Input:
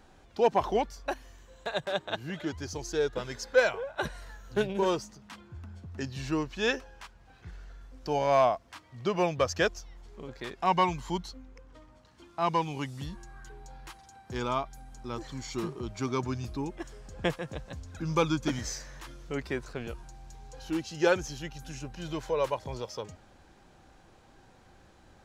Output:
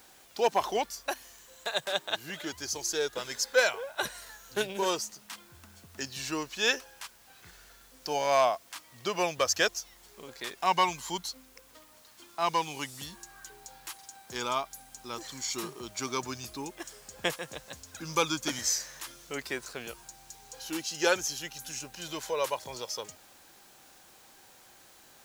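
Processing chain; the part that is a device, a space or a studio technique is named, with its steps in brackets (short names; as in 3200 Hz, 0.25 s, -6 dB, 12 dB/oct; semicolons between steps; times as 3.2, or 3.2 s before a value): turntable without a phono preamp (RIAA curve recording; white noise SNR 26 dB)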